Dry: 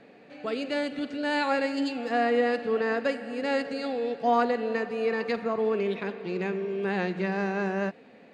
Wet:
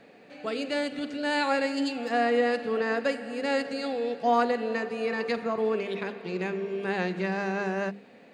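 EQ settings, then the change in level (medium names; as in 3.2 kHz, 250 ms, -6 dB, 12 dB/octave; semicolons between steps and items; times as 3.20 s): treble shelf 6.9 kHz +9 dB; hum notches 50/100/150/200/250/300/350/400/450 Hz; 0.0 dB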